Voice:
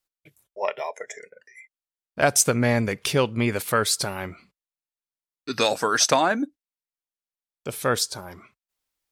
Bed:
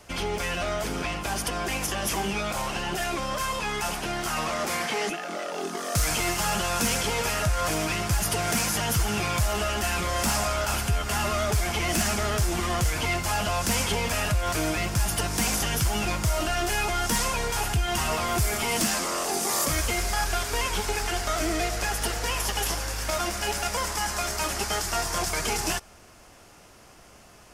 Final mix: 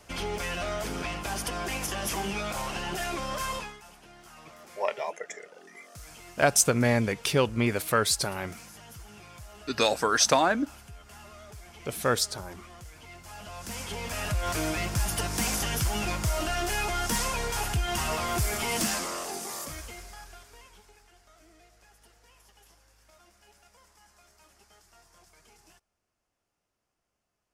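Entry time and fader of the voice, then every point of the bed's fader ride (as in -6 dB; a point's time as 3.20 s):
4.20 s, -2.5 dB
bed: 3.57 s -3.5 dB
3.81 s -22 dB
13.05 s -22 dB
14.44 s -3 dB
18.93 s -3 dB
21.08 s -31.5 dB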